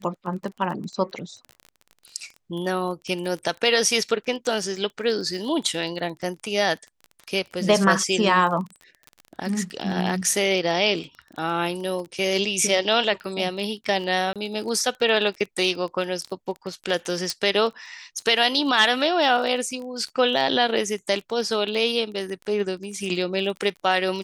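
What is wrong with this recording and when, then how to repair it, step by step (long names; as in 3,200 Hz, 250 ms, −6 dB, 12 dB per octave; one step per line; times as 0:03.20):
surface crackle 21 per second −31 dBFS
0:14.33–0:14.36: drop-out 27 ms
0:17.30: click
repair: click removal
repair the gap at 0:14.33, 27 ms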